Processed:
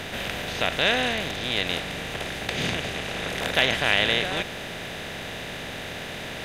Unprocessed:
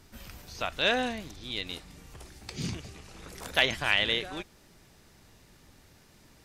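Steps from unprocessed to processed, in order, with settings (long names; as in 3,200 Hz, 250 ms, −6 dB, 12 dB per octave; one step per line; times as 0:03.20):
compressor on every frequency bin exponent 0.4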